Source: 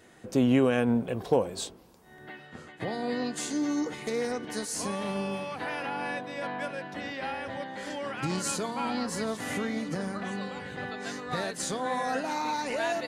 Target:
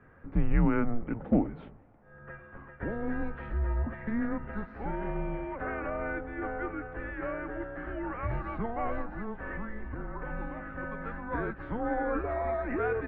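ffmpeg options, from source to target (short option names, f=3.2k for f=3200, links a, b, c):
-filter_complex "[0:a]asettb=1/sr,asplit=3[a][b][c];[a]atrim=end=9.014[d];[b]atrim=start=9.01:end=10.3,asetpts=PTS-STARTPTS,afade=t=in:d=0.004:c=qsin,afade=t=out:st=1.286:d=0.004:c=qsin,acompressor=threshold=-32dB:ratio=6[e];[c]atrim=start=10.296[f];[d][e]acrossfade=d=0.004:c1=hsin:c2=qsin[g];[g][f]acrossfade=d=0.004:c1=qsin:c2=hsin,highpass=f=160:t=q:w=0.5412,highpass=f=160:t=q:w=1.307,lowpass=f=2.2k:t=q:w=0.5176,lowpass=f=2.2k:t=q:w=0.7071,lowpass=f=2.2k:t=q:w=1.932,afreqshift=-230"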